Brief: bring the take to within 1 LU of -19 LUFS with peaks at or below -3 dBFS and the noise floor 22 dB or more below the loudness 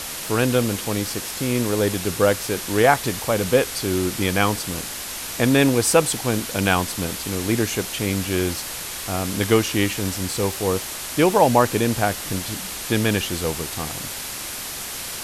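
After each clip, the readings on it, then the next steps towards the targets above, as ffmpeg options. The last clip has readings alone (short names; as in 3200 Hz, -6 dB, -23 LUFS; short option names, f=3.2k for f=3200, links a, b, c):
noise floor -32 dBFS; noise floor target -44 dBFS; loudness -21.5 LUFS; peak -2.0 dBFS; loudness target -19.0 LUFS
-> -af "afftdn=nr=12:nf=-32"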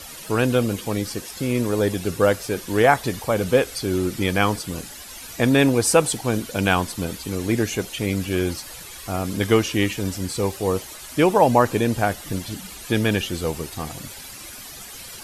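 noise floor -39 dBFS; noise floor target -44 dBFS
-> -af "afftdn=nr=6:nf=-39"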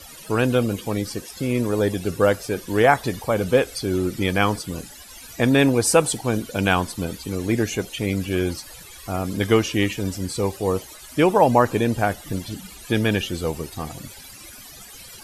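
noise floor -42 dBFS; noise floor target -44 dBFS
-> -af "afftdn=nr=6:nf=-42"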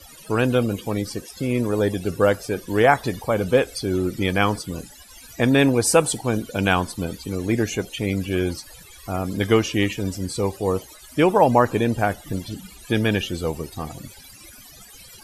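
noise floor -45 dBFS; loudness -22.0 LUFS; peak -2.0 dBFS; loudness target -19.0 LUFS
-> -af "volume=3dB,alimiter=limit=-3dB:level=0:latency=1"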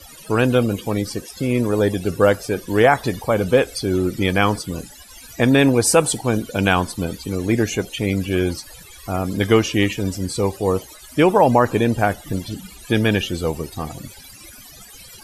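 loudness -19.5 LUFS; peak -3.0 dBFS; noise floor -42 dBFS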